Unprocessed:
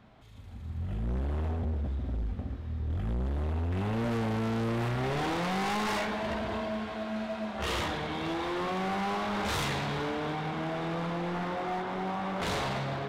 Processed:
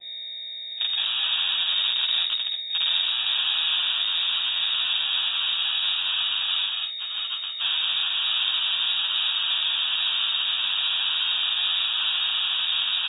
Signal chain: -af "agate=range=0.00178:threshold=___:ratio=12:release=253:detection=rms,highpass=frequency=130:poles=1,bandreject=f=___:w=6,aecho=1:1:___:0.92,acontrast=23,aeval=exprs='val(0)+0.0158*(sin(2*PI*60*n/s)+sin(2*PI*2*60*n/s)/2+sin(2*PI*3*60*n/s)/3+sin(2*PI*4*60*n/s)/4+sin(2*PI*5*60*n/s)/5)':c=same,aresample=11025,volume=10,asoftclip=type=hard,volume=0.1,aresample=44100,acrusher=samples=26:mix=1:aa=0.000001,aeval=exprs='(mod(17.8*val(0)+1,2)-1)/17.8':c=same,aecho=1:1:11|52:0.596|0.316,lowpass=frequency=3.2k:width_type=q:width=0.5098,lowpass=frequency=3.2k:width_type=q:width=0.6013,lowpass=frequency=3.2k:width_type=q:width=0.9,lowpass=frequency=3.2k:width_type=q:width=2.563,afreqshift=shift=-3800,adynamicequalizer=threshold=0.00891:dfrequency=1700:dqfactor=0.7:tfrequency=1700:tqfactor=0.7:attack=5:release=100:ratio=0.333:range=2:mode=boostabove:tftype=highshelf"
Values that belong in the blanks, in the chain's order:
0.0251, 1.1k, 2.4